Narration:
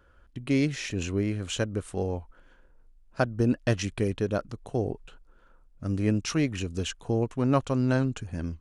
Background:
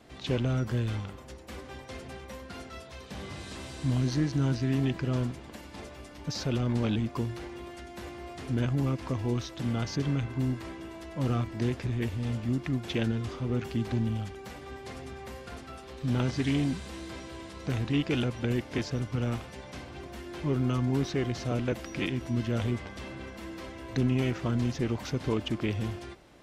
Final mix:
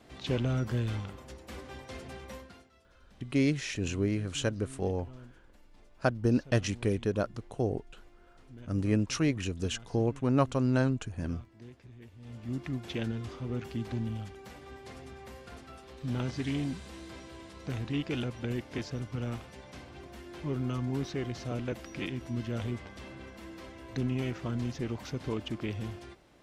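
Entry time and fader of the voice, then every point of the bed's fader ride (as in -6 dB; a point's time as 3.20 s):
2.85 s, -2.0 dB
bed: 2.37 s -1.5 dB
2.72 s -20.5 dB
12.13 s -20.5 dB
12.56 s -5 dB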